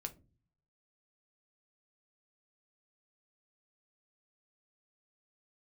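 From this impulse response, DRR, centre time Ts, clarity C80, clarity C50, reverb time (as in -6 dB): 6.0 dB, 6 ms, 25.5 dB, 17.5 dB, 0.35 s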